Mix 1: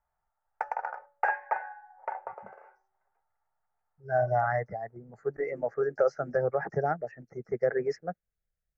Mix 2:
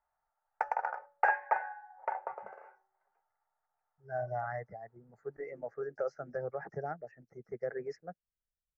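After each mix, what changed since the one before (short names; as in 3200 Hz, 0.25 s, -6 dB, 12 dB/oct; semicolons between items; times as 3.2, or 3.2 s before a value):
speech -10.0 dB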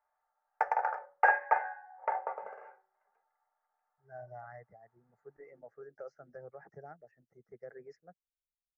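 speech -11.0 dB; reverb: on, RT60 0.30 s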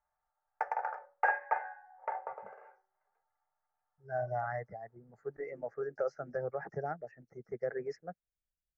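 speech +12.0 dB; background -4.5 dB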